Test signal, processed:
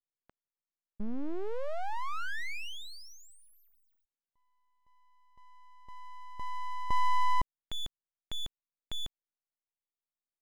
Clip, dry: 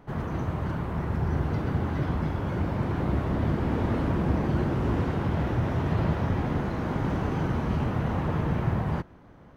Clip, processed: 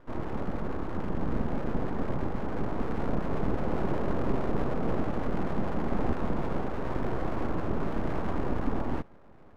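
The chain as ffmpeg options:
-af "lowpass=1100,aeval=exprs='abs(val(0))':c=same"

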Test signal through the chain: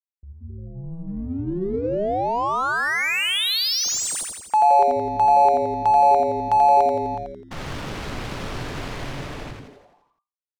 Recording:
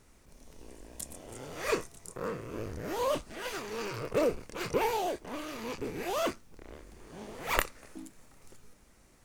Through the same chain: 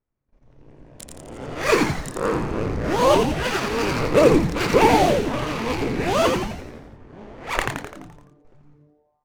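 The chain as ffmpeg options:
-filter_complex "[0:a]agate=range=0.1:threshold=0.00224:ratio=16:detection=peak,bandreject=f=60:t=h:w=6,bandreject=f=120:t=h:w=6,bandreject=f=180:t=h:w=6,bandreject=f=240:t=h:w=6,bandreject=f=300:t=h:w=6,bandreject=f=360:t=h:w=6,bandreject=f=420:t=h:w=6,bandreject=f=480:t=h:w=6,dynaudnorm=f=150:g=17:m=4.47,asplit=2[s0][s1];[s1]aeval=exprs='sgn(val(0))*max(abs(val(0))-0.0075,0)':c=same,volume=0.251[s2];[s0][s2]amix=inputs=2:normalize=0,adynamicsmooth=sensitivity=5.5:basefreq=1900,asplit=2[s3][s4];[s4]asplit=8[s5][s6][s7][s8][s9][s10][s11][s12];[s5]adelay=85,afreqshift=-150,volume=0.668[s13];[s6]adelay=170,afreqshift=-300,volume=0.38[s14];[s7]adelay=255,afreqshift=-450,volume=0.216[s15];[s8]adelay=340,afreqshift=-600,volume=0.124[s16];[s9]adelay=425,afreqshift=-750,volume=0.0708[s17];[s10]adelay=510,afreqshift=-900,volume=0.0403[s18];[s11]adelay=595,afreqshift=-1050,volume=0.0229[s19];[s12]adelay=680,afreqshift=-1200,volume=0.013[s20];[s13][s14][s15][s16][s17][s18][s19][s20]amix=inputs=8:normalize=0[s21];[s3][s21]amix=inputs=2:normalize=0,volume=0.841"

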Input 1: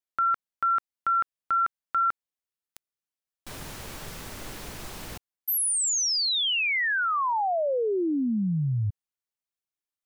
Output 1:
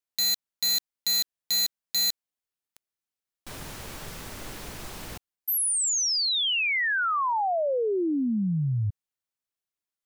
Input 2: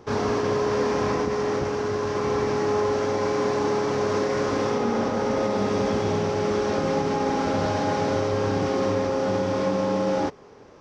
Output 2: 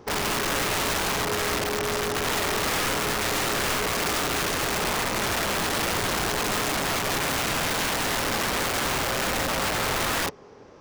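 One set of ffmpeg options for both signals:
-af "aeval=exprs='(mod(11.2*val(0)+1,2)-1)/11.2':c=same"

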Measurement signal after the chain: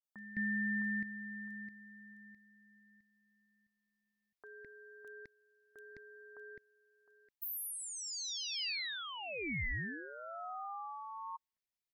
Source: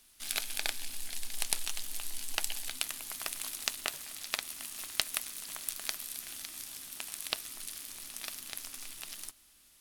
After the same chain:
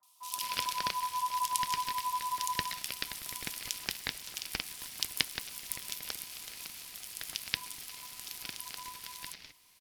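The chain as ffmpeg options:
-filter_complex "[0:a]equalizer=f=125:t=o:w=1:g=-6,equalizer=f=500:t=o:w=1:g=-11,equalizer=f=1000:t=o:w=1:g=8,equalizer=f=2000:t=o:w=1:g=-7,equalizer=f=4000:t=o:w=1:g=8,equalizer=f=8000:t=o:w=1:g=-5,acrossover=split=540|4500[s0][s1][s2];[s2]adelay=30[s3];[s1]adelay=210[s4];[s0][s4][s3]amix=inputs=3:normalize=0,aeval=exprs='val(0)*sin(2*PI*1000*n/s)':c=same,volume=1.41"

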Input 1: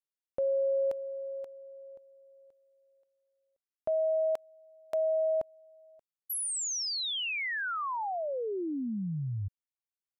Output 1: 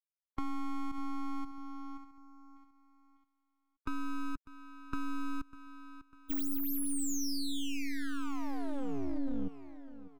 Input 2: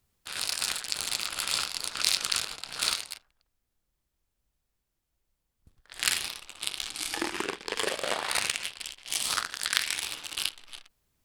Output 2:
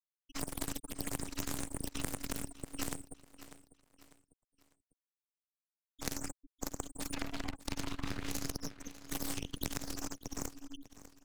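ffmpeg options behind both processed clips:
-filter_complex "[0:a]afftfilt=real='re*gte(hypot(re,im),0.0398)':imag='im*gte(hypot(re,im),0.0398)':win_size=1024:overlap=0.75,aeval=exprs='abs(val(0))':c=same,acompressor=threshold=0.0158:ratio=12:attack=4.9:release=78:knee=6:detection=rms,asplit=2[s0][s1];[s1]aecho=0:1:598|1196|1794:0.141|0.0537|0.0204[s2];[s0][s2]amix=inputs=2:normalize=0,tremolo=f=280:d=0.947,acrossover=split=280|5600[s3][s4][s5];[s4]acompressor=threshold=0.00316:ratio=6:attack=20:release=832:knee=2.83:detection=peak[s6];[s3][s6][s5]amix=inputs=3:normalize=0,volume=3.16"

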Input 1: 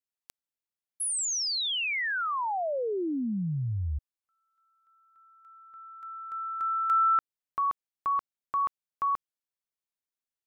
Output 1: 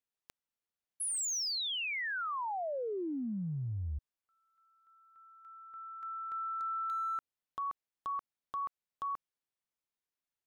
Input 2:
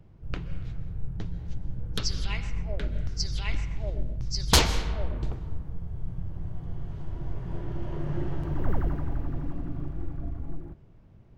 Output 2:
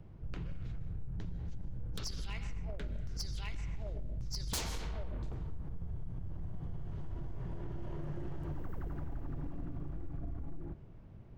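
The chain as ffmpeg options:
-filter_complex "[0:a]highshelf=f=4700:g=-7,acrossover=split=6400[s0][s1];[s0]acompressor=threshold=0.0158:ratio=6:attack=1.4:release=92:knee=6:detection=peak[s2];[s2][s1]amix=inputs=2:normalize=0,volume=47.3,asoftclip=hard,volume=0.0211,volume=1.12"

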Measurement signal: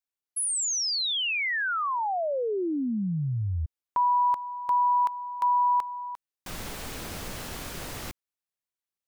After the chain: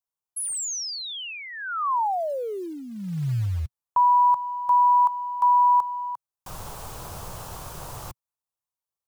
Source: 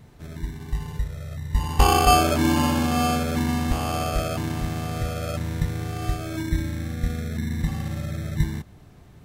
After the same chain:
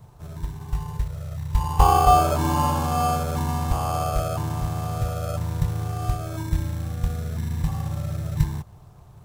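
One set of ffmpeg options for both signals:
-filter_complex "[0:a]equalizer=f=125:t=o:w=1:g=6,equalizer=f=250:t=o:w=1:g=-11,equalizer=f=1000:t=o:w=1:g=8,equalizer=f=2000:t=o:w=1:g=-11,equalizer=f=4000:t=o:w=1:g=-4,acrossover=split=580|1300[s0][s1][s2];[s0]acrusher=bits=6:mode=log:mix=0:aa=0.000001[s3];[s2]asoftclip=type=hard:threshold=0.0447[s4];[s3][s1][s4]amix=inputs=3:normalize=0"

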